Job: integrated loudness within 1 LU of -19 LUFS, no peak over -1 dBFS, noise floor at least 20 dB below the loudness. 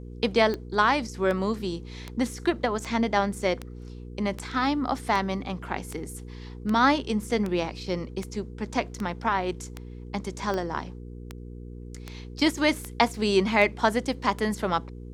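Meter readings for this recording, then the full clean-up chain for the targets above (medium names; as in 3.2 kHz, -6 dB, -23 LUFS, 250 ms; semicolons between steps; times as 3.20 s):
clicks found 19; hum 60 Hz; highest harmonic 480 Hz; hum level -38 dBFS; loudness -27.0 LUFS; peak level -5.5 dBFS; loudness target -19.0 LUFS
-> de-click; de-hum 60 Hz, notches 8; trim +8 dB; peak limiter -1 dBFS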